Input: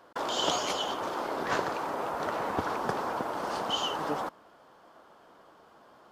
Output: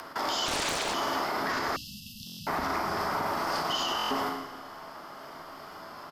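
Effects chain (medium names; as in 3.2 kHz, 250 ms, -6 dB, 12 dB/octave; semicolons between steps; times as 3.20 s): frequency shift -33 Hz; graphic EQ with 31 bands 500 Hz -8 dB, 1.25 kHz +4 dB, 2 kHz +8 dB, 5 kHz +11 dB, 12.5 kHz +11 dB; Schroeder reverb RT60 1.2 s, combs from 26 ms, DRR 3.5 dB; peak limiter -23 dBFS, peak gain reduction 10.5 dB; on a send: early reflections 12 ms -11 dB, 41 ms -9.5 dB; on the sum: upward compressor, threshold -36 dBFS; 1.76–2.47 s: brick-wall FIR band-stop 240–2600 Hz; hum notches 60/120/180/240/300 Hz; buffer glitch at 2.25/3.97 s, samples 1024, times 5; 0.46–0.94 s: loudspeaker Doppler distortion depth 0.85 ms; trim +1.5 dB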